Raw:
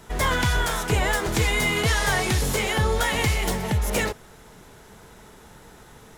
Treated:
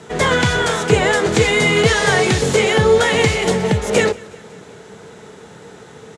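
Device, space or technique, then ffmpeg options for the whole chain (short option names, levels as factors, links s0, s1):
car door speaker: -af "highpass=82,highpass=83,equalizer=f=170:t=q:w=4:g=4,equalizer=f=450:t=q:w=4:g=8,equalizer=f=1000:t=q:w=4:g=-3,equalizer=f=5300:t=q:w=4:g=-3,lowpass=f=8300:w=0.5412,lowpass=f=8300:w=1.3066,aecho=1:1:184|368|552|736:0.0708|0.0418|0.0246|0.0145,volume=2.37"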